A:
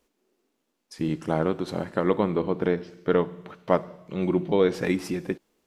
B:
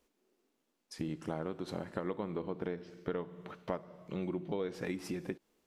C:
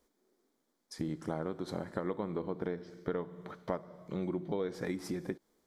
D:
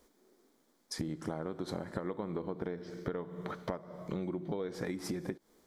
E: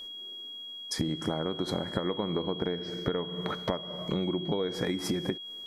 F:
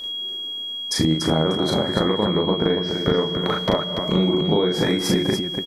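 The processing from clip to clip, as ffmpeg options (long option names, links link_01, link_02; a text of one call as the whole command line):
ffmpeg -i in.wav -af "acompressor=threshold=-31dB:ratio=4,volume=-4dB" out.wav
ffmpeg -i in.wav -af "equalizer=frequency=2700:width_type=o:width=0.25:gain=-15,volume=1.5dB" out.wav
ffmpeg -i in.wav -af "acompressor=threshold=-43dB:ratio=4,volume=8dB" out.wav
ffmpeg -i in.wav -af "aeval=exprs='val(0)+0.00501*sin(2*PI*3300*n/s)':channel_layout=same,volume=6.5dB" out.wav
ffmpeg -i in.wav -af "aecho=1:1:37.9|288.6:0.794|0.501,volume=8.5dB" out.wav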